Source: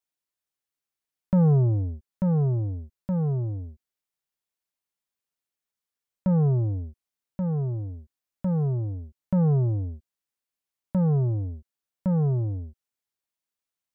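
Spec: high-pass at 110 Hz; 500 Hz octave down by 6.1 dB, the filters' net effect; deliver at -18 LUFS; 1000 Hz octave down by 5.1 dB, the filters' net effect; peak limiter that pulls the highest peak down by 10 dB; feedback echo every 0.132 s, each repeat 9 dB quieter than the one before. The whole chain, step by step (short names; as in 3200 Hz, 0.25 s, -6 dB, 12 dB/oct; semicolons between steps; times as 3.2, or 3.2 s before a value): HPF 110 Hz; bell 500 Hz -6.5 dB; bell 1000 Hz -4 dB; limiter -25.5 dBFS; feedback echo 0.132 s, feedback 35%, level -9 dB; gain +15 dB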